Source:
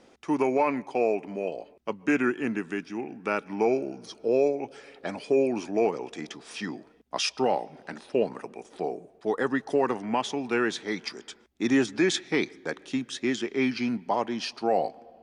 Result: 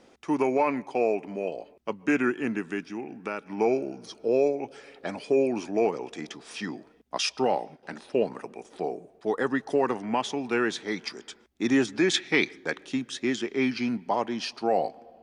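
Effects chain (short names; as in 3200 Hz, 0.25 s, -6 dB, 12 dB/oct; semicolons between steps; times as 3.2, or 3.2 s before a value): 2.91–3.58 compressor 2.5:1, threshold -31 dBFS, peak gain reduction 6.5 dB; 7.18–7.83 gate -42 dBFS, range -14 dB; 12.13–12.91 dynamic EQ 2500 Hz, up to +7 dB, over -43 dBFS, Q 0.83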